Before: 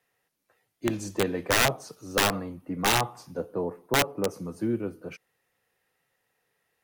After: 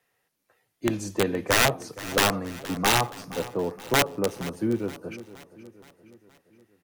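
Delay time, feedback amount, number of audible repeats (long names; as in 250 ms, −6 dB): 471 ms, 52%, 4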